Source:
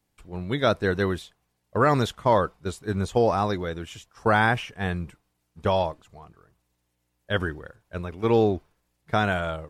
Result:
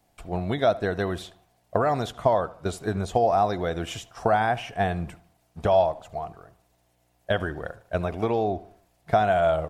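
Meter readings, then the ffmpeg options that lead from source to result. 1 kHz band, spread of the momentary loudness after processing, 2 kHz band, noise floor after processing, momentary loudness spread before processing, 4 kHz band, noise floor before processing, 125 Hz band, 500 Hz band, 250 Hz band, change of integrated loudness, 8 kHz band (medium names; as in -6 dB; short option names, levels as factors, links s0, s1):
+1.5 dB, 13 LU, -4.0 dB, -67 dBFS, 15 LU, -3.0 dB, -75 dBFS, -2.5 dB, +1.5 dB, -3.0 dB, -0.5 dB, +0.5 dB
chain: -filter_complex "[0:a]acompressor=threshold=0.0282:ratio=6,equalizer=f=690:t=o:w=0.38:g=14.5,asplit=2[s0][s1];[s1]adelay=75,lowpass=f=3600:p=1,volume=0.119,asplit=2[s2][s3];[s3]adelay=75,lowpass=f=3600:p=1,volume=0.44,asplit=2[s4][s5];[s5]adelay=75,lowpass=f=3600:p=1,volume=0.44,asplit=2[s6][s7];[s7]adelay=75,lowpass=f=3600:p=1,volume=0.44[s8];[s2][s4][s6][s8]amix=inputs=4:normalize=0[s9];[s0][s9]amix=inputs=2:normalize=0,volume=2.11"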